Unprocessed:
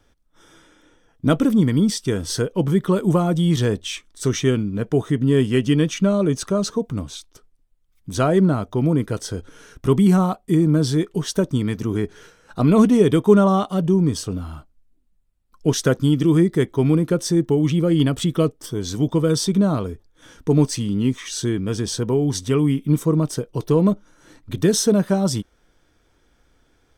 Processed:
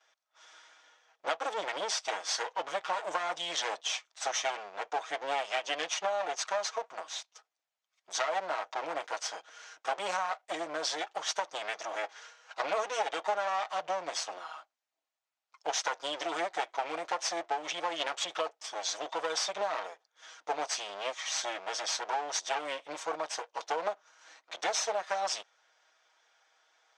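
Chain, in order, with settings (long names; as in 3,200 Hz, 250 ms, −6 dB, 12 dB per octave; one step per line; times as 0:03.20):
lower of the sound and its delayed copy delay 6.3 ms
Chebyshev band-pass filter 680–6,600 Hz, order 3
downward compressor 6 to 1, threshold −28 dBFS, peak gain reduction 11.5 dB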